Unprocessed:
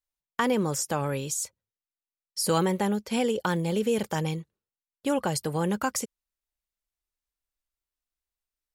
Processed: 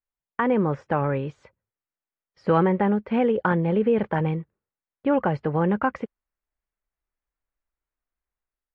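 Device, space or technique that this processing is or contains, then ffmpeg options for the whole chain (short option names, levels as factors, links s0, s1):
action camera in a waterproof case: -af "lowpass=f=2100:w=0.5412,lowpass=f=2100:w=1.3066,dynaudnorm=f=180:g=5:m=1.78" -ar 44100 -c:a aac -b:a 48k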